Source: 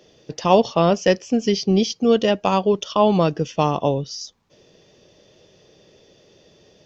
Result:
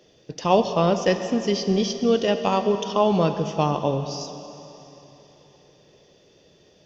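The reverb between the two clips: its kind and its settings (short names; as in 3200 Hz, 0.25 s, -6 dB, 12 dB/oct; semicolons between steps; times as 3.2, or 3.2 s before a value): plate-style reverb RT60 3.4 s, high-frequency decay 1×, DRR 7.5 dB; gain -3.5 dB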